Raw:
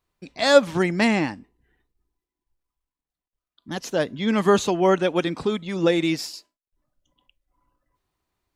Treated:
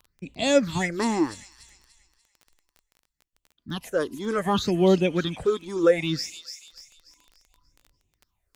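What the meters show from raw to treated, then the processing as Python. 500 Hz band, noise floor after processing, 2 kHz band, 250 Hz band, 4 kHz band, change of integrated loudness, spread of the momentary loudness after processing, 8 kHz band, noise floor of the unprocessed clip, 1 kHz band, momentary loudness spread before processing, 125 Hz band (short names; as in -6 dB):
-2.5 dB, -81 dBFS, -5.5 dB, -2.5 dB, -3.0 dB, -3.0 dB, 17 LU, -1.0 dB, under -85 dBFS, -4.5 dB, 12 LU, -0.5 dB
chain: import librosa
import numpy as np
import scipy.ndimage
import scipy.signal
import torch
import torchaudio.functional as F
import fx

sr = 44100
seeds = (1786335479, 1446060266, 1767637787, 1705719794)

y = fx.low_shelf(x, sr, hz=260.0, db=4.5)
y = fx.phaser_stages(y, sr, stages=6, low_hz=150.0, high_hz=1500.0, hz=0.66, feedback_pct=50)
y = fx.echo_wet_highpass(y, sr, ms=292, feedback_pct=40, hz=3800.0, wet_db=-6.0)
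y = fx.dmg_crackle(y, sr, seeds[0], per_s=17.0, level_db=-39.0)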